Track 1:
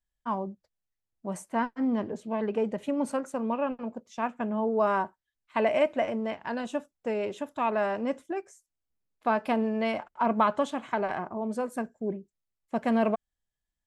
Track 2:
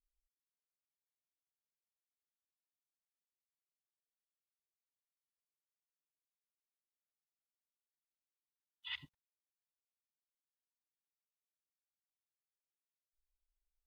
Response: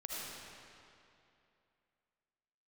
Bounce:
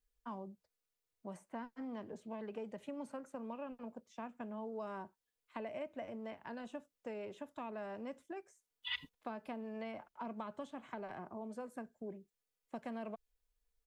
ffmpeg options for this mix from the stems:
-filter_complex "[0:a]acrossover=split=170|520|2800[a][b][c][d];[a]acompressor=threshold=-48dB:ratio=4[e];[b]acompressor=threshold=-39dB:ratio=4[f];[c]acompressor=threshold=-39dB:ratio=4[g];[d]acompressor=threshold=-57dB:ratio=4[h];[e][f][g][h]amix=inputs=4:normalize=0,volume=-9dB[i];[1:a]equalizer=f=450:w=5.4:g=12,aecho=1:1:4.1:0.77,volume=1.5dB[j];[i][j]amix=inputs=2:normalize=0"

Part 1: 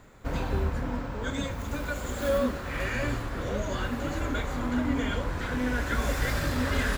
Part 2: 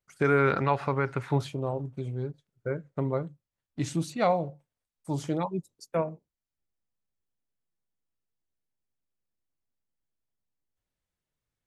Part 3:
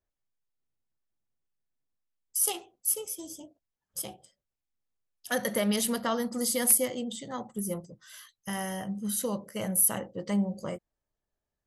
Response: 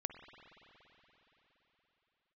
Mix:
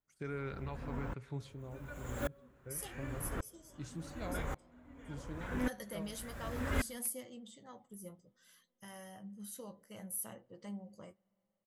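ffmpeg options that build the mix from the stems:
-filter_complex "[0:a]equalizer=f=4.5k:t=o:w=0.73:g=-10.5,aeval=exprs='val(0)*pow(10,-37*if(lt(mod(-0.88*n/s,1),2*abs(-0.88)/1000),1-mod(-0.88*n/s,1)/(2*abs(-0.88)/1000),(mod(-0.88*n/s,1)-2*abs(-0.88)/1000)/(1-2*abs(-0.88)/1000))/20)':c=same,volume=-4dB[a];[1:a]equalizer=f=910:w=0.52:g=-9.5,volume=-15.5dB,asplit=2[b][c];[c]volume=-8.5dB[d];[2:a]flanger=delay=8.1:depth=3.2:regen=53:speed=0.59:shape=triangular,adelay=350,volume=-13dB,asplit=2[e][f];[f]volume=-20.5dB[g];[3:a]atrim=start_sample=2205[h];[d][g]amix=inputs=2:normalize=0[i];[i][h]afir=irnorm=-1:irlink=0[j];[a][b][e][j]amix=inputs=4:normalize=0"

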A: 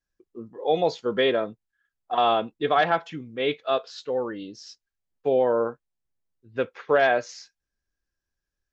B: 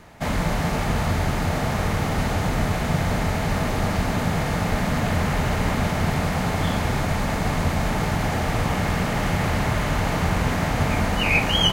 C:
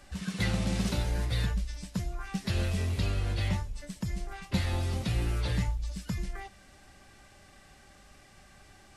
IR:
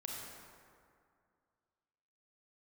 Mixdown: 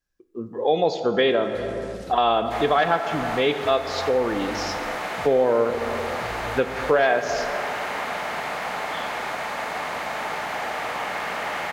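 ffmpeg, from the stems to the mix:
-filter_complex "[0:a]dynaudnorm=f=130:g=7:m=8dB,volume=1dB,asplit=2[a][b];[b]volume=-5dB[c];[1:a]acrossover=split=3700[d][e];[e]acompressor=threshold=-46dB:ratio=4:attack=1:release=60[f];[d][f]amix=inputs=2:normalize=0,highpass=610,aeval=exprs='val(0)+0.00141*(sin(2*PI*60*n/s)+sin(2*PI*2*60*n/s)/2+sin(2*PI*3*60*n/s)/3+sin(2*PI*4*60*n/s)/4+sin(2*PI*5*60*n/s)/5)':c=same,adelay=2300,volume=1dB[g];[2:a]adelay=1150,volume=-10.5dB[h];[3:a]atrim=start_sample=2205[i];[c][i]afir=irnorm=-1:irlink=0[j];[a][g][h][j]amix=inputs=4:normalize=0,acompressor=threshold=-23dB:ratio=2"

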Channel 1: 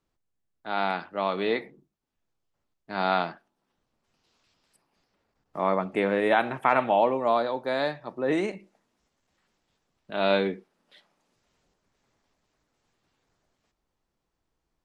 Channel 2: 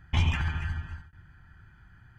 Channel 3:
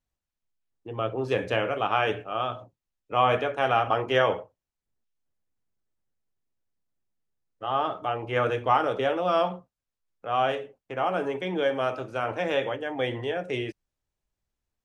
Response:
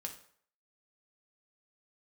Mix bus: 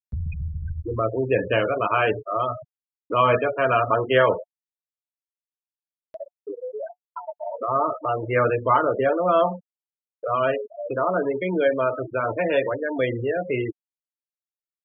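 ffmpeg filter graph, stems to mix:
-filter_complex "[0:a]flanger=delay=20:depth=3.9:speed=3,adelay=500,volume=-12.5dB,asplit=2[a][b];[b]volume=-23.5dB[c];[1:a]acrossover=split=240[d][e];[e]acompressor=threshold=-31dB:ratio=6[f];[d][f]amix=inputs=2:normalize=0,alimiter=limit=-22.5dB:level=0:latency=1:release=47,volume=-2dB[g];[2:a]highpass=44,equalizer=f=3.3k:w=6.5:g=-4,acontrast=32,volume=0dB[h];[c]aecho=0:1:475:1[i];[a][g][h][i]amix=inputs=4:normalize=0,afftfilt=real='re*gte(hypot(re,im),0.0794)':imag='im*gte(hypot(re,im),0.0794)':win_size=1024:overlap=0.75,asuperstop=centerf=790:order=12:qfactor=5.6,acompressor=mode=upward:threshold=-22dB:ratio=2.5"

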